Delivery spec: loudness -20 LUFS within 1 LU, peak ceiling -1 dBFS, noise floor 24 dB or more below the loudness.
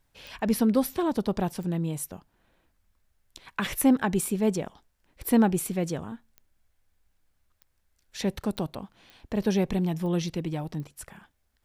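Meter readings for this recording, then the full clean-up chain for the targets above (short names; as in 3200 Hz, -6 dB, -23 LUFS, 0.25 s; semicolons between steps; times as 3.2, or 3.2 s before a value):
clicks 8; loudness -27.5 LUFS; peak -9.5 dBFS; loudness target -20.0 LUFS
-> de-click; gain +7.5 dB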